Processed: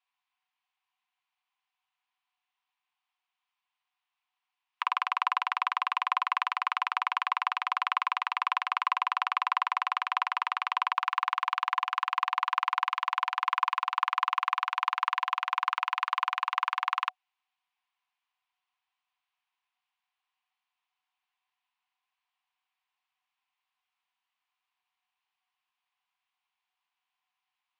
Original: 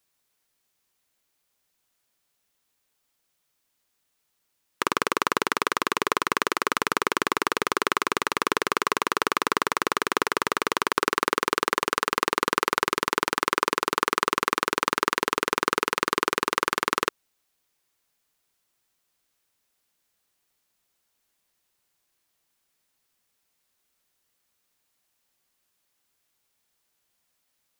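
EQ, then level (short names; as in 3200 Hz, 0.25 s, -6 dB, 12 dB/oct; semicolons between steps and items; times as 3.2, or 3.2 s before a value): rippled Chebyshev high-pass 720 Hz, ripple 9 dB; tape spacing loss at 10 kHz 33 dB; +6.0 dB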